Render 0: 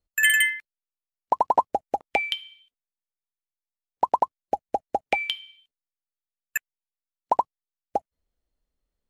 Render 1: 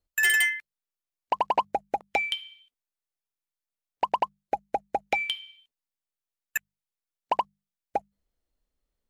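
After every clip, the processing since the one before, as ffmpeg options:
ffmpeg -i in.wav -af "bandreject=frequency=50:width_type=h:width=6,bandreject=frequency=100:width_type=h:width=6,bandreject=frequency=150:width_type=h:width=6,bandreject=frequency=200:width_type=h:width=6,asoftclip=type=tanh:threshold=-16dB" out.wav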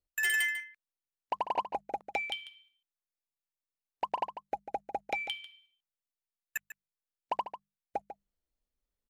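ffmpeg -i in.wav -filter_complex "[0:a]asplit=2[link_01][link_02];[link_02]adelay=145.8,volume=-11dB,highshelf=frequency=4000:gain=-3.28[link_03];[link_01][link_03]amix=inputs=2:normalize=0,volume=-7.5dB" out.wav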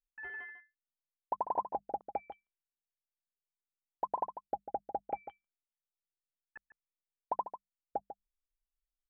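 ffmpeg -i in.wav -af "lowpass=frequency=1200:width=0.5412,lowpass=frequency=1200:width=1.3066,anlmdn=0.0000398,volume=-1dB" out.wav

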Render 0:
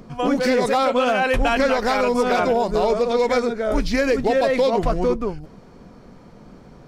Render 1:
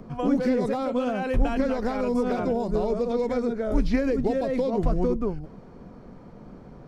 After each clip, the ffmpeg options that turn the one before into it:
ffmpeg -i in.wav -filter_complex "[0:a]highshelf=frequency=2200:gain=-11.5,acrossover=split=370|4400[link_01][link_02][link_03];[link_02]acompressor=threshold=-30dB:ratio=6[link_04];[link_03]alimiter=level_in=18dB:limit=-24dB:level=0:latency=1:release=140,volume=-18dB[link_05];[link_01][link_04][link_05]amix=inputs=3:normalize=0" out.wav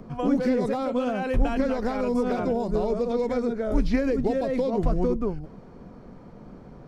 ffmpeg -i in.wav -af anull out.wav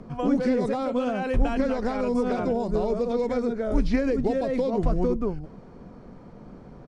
ffmpeg -i in.wav -af "aresample=22050,aresample=44100" out.wav

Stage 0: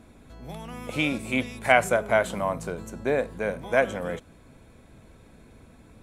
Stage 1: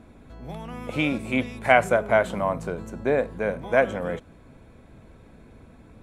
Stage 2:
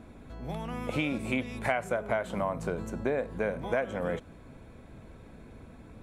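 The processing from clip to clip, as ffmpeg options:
ffmpeg -i in.wav -af "highshelf=frequency=3800:gain=-10,volume=2.5dB" out.wav
ffmpeg -i in.wav -af "acompressor=threshold=-26dB:ratio=6" out.wav

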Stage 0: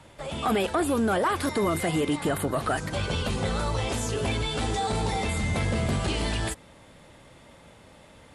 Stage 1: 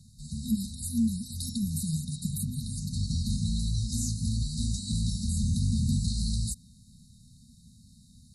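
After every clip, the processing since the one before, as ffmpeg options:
ffmpeg -i in.wav -af "afftfilt=real='re*(1-between(b*sr/4096,250,3700))':imag='im*(1-between(b*sr/4096,250,3700))':win_size=4096:overlap=0.75,volume=1dB" out.wav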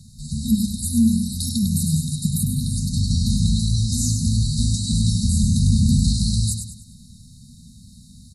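ffmpeg -i in.wav -af "aecho=1:1:101|202|303|404|505:0.473|0.185|0.072|0.0281|0.0109,volume=9dB" out.wav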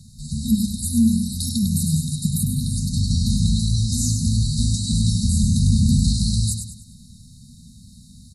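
ffmpeg -i in.wav -af anull out.wav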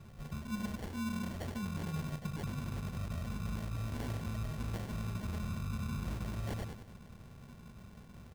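ffmpeg -i in.wav -af "areverse,acompressor=threshold=-29dB:ratio=5,areverse,acrusher=samples=35:mix=1:aa=0.000001,volume=-7.5dB" out.wav

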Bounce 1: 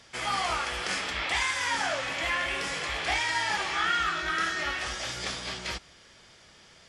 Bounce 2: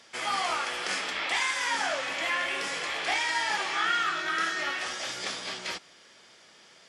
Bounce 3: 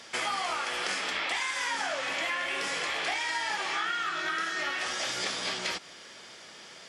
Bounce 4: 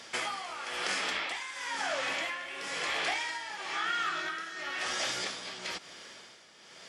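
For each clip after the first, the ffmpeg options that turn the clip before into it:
ffmpeg -i in.wav -af "highpass=230" out.wav
ffmpeg -i in.wav -af "acompressor=threshold=-36dB:ratio=6,volume=7dB" out.wav
ffmpeg -i in.wav -af "tremolo=f=1:d=0.65" out.wav

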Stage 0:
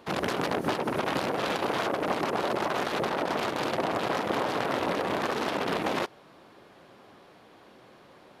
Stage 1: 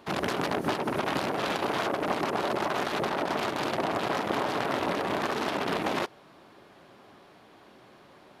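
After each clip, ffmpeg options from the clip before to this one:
ffmpeg -i in.wav -af "bandreject=frequency=500:width=12" out.wav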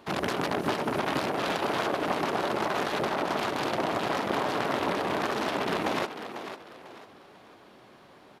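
ffmpeg -i in.wav -filter_complex "[0:a]asplit=5[link_01][link_02][link_03][link_04][link_05];[link_02]adelay=496,afreqshift=35,volume=-10dB[link_06];[link_03]adelay=992,afreqshift=70,volume=-19.6dB[link_07];[link_04]adelay=1488,afreqshift=105,volume=-29.3dB[link_08];[link_05]adelay=1984,afreqshift=140,volume=-38.9dB[link_09];[link_01][link_06][link_07][link_08][link_09]amix=inputs=5:normalize=0" out.wav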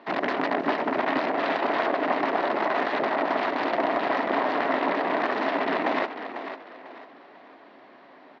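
ffmpeg -i in.wav -af "highpass=260,equalizer=frequency=270:width_type=q:width=4:gain=9,equalizer=frequency=670:width_type=q:width=4:gain=7,equalizer=frequency=1000:width_type=q:width=4:gain=4,equalizer=frequency=1900:width_type=q:width=4:gain=8,equalizer=frequency=3300:width_type=q:width=4:gain=-3,lowpass=frequency=4200:width=0.5412,lowpass=frequency=4200:width=1.3066" out.wav

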